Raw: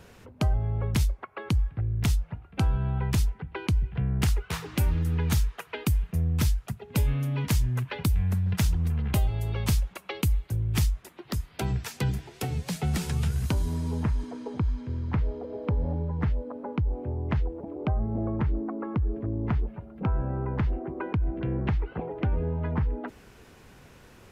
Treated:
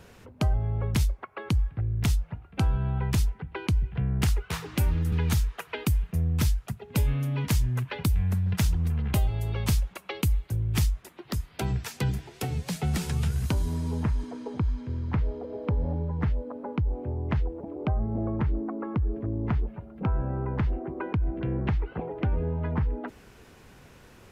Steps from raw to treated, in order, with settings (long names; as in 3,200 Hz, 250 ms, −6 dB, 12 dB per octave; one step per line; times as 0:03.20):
0:05.12–0:05.86: multiband upward and downward compressor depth 40%